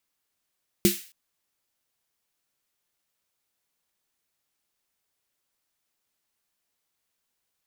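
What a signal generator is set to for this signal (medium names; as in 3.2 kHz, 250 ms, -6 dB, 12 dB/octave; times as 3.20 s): snare drum length 0.27 s, tones 200 Hz, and 350 Hz, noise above 1.9 kHz, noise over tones -6.5 dB, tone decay 0.17 s, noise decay 0.43 s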